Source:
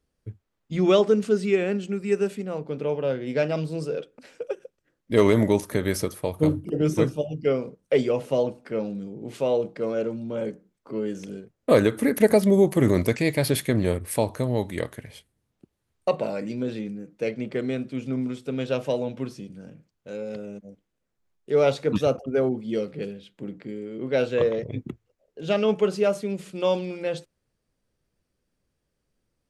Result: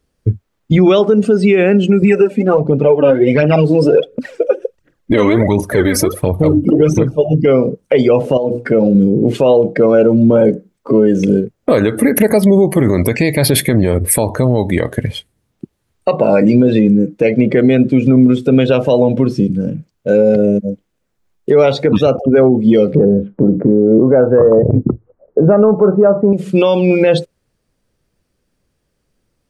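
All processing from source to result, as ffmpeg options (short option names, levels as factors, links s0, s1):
-filter_complex "[0:a]asettb=1/sr,asplit=3[s0][s1][s2];[s0]atrim=end=2.024[s3];[s1]atrim=start=2.02:end=7.29,asetpts=PTS-STARTPTS,afade=t=in:d=0.004:c=qsin,afade=t=out:st=5.266:d=0.004:c=qsin,highshelf=f=3800:g=-3.5,aphaser=in_gain=1:out_gain=1:delay=4.2:decay=0.62:speed=1.4:type=triangular[s4];[s2]atrim=start=7.286[s5];[s3][s4]acrossfade=d=0.004:c1=hsin:c2=qsin[s6];[s6][s5]acrossfade=d=0.004:c1=qsin:c2=hsin,asettb=1/sr,asplit=3[s7][s8][s9];[s7]atrim=end=8.374[s10];[s8]atrim=start=8.37:end=8.95,asetpts=PTS-STARTPTS,afade=t=in:d=0.004:c=qsin,afade=t=out:st=0.576:d=0.004:c=qsin,bandreject=f=60:t=h:w=6,bandreject=f=120:t=h:w=6,bandreject=f=180:t=h:w=6,bandreject=f=240:t=h:w=6,bandreject=f=300:t=h:w=6,bandreject=f=360:t=h:w=6,bandreject=f=420:t=h:w=6,bandreject=f=480:t=h:w=6,bandreject=f=540:t=h:w=6,acompressor=threshold=0.0251:ratio=5:attack=3.2:release=140:knee=1:detection=peak[s11];[s9]atrim=start=8.946[s12];[s10][s11]acrossfade=d=0.004:c1=hsin:c2=qsin[s13];[s13][s12]acrossfade=d=0.004:c1=qsin:c2=hsin,asettb=1/sr,asplit=3[s14][s15][s16];[s14]atrim=end=22.954[s17];[s15]atrim=start=22.95:end=26.33,asetpts=PTS-STARTPTS,afade=t=in:d=0.004:c=qsin,afade=t=out:st=3.376:d=0.004:c=qsin,acontrast=76,lowpass=f=1300:w=0.5412,lowpass=f=1300:w=1.3066[s18];[s16]atrim=start=26.326[s19];[s17][s18]acrossfade=d=0.004:c1=hsin:c2=qsin[s20];[s20][s19]acrossfade=d=0.004:c1=qsin:c2=hsin,afftdn=nr=16:nf=-40,acompressor=threshold=0.0316:ratio=6,alimiter=level_in=22.4:limit=0.891:release=50:level=0:latency=1,volume=0.891"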